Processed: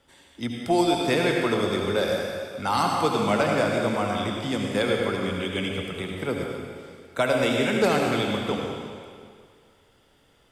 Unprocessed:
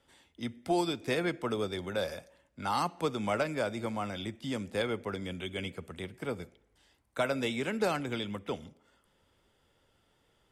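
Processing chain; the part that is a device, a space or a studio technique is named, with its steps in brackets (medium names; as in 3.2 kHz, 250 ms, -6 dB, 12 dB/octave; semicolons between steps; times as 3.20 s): stairwell (reverberation RT60 2.1 s, pre-delay 67 ms, DRR 0 dB); trim +6.5 dB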